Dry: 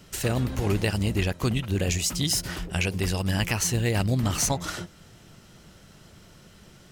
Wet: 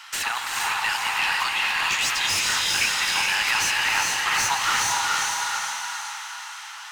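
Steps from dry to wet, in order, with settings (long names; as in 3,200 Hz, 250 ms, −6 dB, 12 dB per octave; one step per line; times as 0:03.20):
feedback delay with all-pass diffusion 451 ms, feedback 45%, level −5 dB
soft clipping −23 dBFS, distortion −11 dB
elliptic high-pass filter 850 Hz, stop band 40 dB
mid-hump overdrive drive 17 dB, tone 2,300 Hz, clips at −18 dBFS
reverb whose tail is shaped and stops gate 490 ms rising, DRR 1.5 dB
level +7 dB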